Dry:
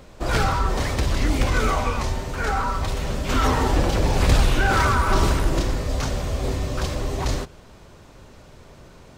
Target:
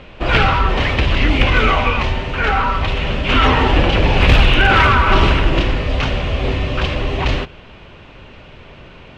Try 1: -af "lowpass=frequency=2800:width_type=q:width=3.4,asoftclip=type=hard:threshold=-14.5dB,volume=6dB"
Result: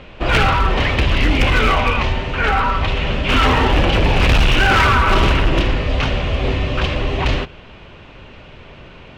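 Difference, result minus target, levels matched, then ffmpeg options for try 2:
hard clipping: distortion +19 dB
-af "lowpass=frequency=2800:width_type=q:width=3.4,asoftclip=type=hard:threshold=-8.5dB,volume=6dB"

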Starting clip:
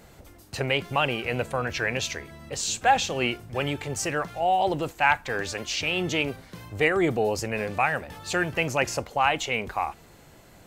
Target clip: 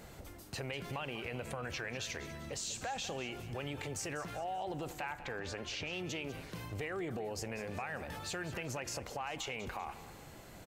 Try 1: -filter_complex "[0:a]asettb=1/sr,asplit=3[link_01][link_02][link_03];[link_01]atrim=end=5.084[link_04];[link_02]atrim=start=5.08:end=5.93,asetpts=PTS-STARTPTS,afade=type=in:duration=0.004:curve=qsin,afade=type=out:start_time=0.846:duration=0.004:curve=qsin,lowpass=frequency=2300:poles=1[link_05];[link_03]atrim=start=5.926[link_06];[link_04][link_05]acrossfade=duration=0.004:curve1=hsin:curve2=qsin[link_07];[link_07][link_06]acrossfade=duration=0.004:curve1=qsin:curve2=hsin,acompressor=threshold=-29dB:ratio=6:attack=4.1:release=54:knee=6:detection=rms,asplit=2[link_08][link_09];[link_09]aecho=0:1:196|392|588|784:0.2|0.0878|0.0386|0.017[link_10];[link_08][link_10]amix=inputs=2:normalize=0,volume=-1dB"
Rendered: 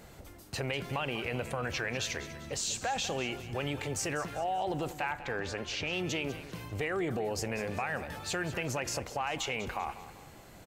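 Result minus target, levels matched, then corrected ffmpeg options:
downward compressor: peak gain reduction −6.5 dB
-filter_complex "[0:a]asettb=1/sr,asplit=3[link_01][link_02][link_03];[link_01]atrim=end=5.084[link_04];[link_02]atrim=start=5.08:end=5.93,asetpts=PTS-STARTPTS,afade=type=in:duration=0.004:curve=qsin,afade=type=out:start_time=0.846:duration=0.004:curve=qsin,lowpass=frequency=2300:poles=1[link_05];[link_03]atrim=start=5.926[link_06];[link_04][link_05]acrossfade=duration=0.004:curve1=hsin:curve2=qsin[link_07];[link_07][link_06]acrossfade=duration=0.004:curve1=qsin:curve2=hsin,acompressor=threshold=-37dB:ratio=6:attack=4.1:release=54:knee=6:detection=rms,asplit=2[link_08][link_09];[link_09]aecho=0:1:196|392|588|784:0.2|0.0878|0.0386|0.017[link_10];[link_08][link_10]amix=inputs=2:normalize=0,volume=-1dB"

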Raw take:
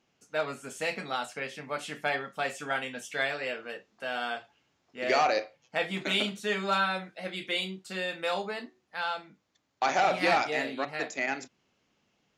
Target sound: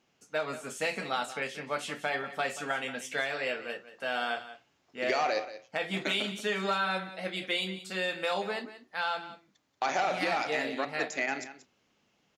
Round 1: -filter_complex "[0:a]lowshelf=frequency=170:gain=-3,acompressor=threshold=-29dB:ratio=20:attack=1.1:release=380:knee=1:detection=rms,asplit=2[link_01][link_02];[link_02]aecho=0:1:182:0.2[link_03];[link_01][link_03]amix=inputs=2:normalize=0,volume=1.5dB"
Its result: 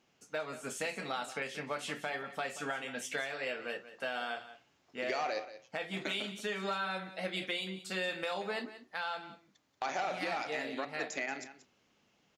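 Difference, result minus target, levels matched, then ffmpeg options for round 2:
downward compressor: peak gain reduction +6 dB
-filter_complex "[0:a]lowshelf=frequency=170:gain=-3,acompressor=threshold=-22.5dB:ratio=20:attack=1.1:release=380:knee=1:detection=rms,asplit=2[link_01][link_02];[link_02]aecho=0:1:182:0.2[link_03];[link_01][link_03]amix=inputs=2:normalize=0,volume=1.5dB"

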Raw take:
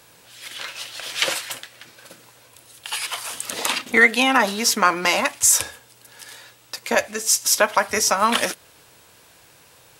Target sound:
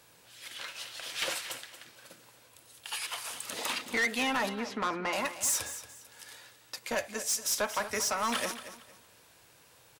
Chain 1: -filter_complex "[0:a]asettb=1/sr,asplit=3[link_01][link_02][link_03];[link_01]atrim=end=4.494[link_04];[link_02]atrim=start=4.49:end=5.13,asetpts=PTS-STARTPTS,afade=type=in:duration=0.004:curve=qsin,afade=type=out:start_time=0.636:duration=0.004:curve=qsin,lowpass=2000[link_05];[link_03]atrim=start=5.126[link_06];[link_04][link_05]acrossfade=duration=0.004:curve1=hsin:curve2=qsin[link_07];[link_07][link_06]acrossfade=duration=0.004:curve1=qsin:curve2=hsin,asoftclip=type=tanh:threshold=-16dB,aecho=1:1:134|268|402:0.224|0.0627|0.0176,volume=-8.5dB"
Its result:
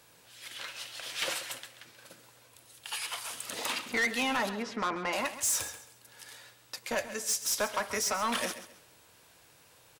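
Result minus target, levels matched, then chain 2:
echo 96 ms early
-filter_complex "[0:a]asettb=1/sr,asplit=3[link_01][link_02][link_03];[link_01]atrim=end=4.494[link_04];[link_02]atrim=start=4.49:end=5.13,asetpts=PTS-STARTPTS,afade=type=in:duration=0.004:curve=qsin,afade=type=out:start_time=0.636:duration=0.004:curve=qsin,lowpass=2000[link_05];[link_03]atrim=start=5.126[link_06];[link_04][link_05]acrossfade=duration=0.004:curve1=hsin:curve2=qsin[link_07];[link_07][link_06]acrossfade=duration=0.004:curve1=qsin:curve2=hsin,asoftclip=type=tanh:threshold=-16dB,aecho=1:1:230|460|690:0.224|0.0627|0.0176,volume=-8.5dB"

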